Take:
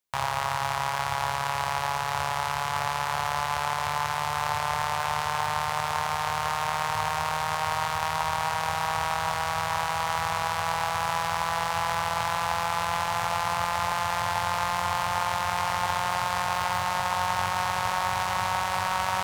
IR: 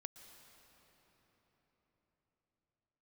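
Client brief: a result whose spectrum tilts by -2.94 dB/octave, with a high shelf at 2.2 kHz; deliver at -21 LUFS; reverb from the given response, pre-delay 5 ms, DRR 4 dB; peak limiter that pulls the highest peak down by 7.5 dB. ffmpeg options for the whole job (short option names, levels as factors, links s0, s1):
-filter_complex "[0:a]highshelf=f=2200:g=3.5,alimiter=limit=0.158:level=0:latency=1,asplit=2[s0][s1];[1:a]atrim=start_sample=2205,adelay=5[s2];[s1][s2]afir=irnorm=-1:irlink=0,volume=1.12[s3];[s0][s3]amix=inputs=2:normalize=0,volume=2.66"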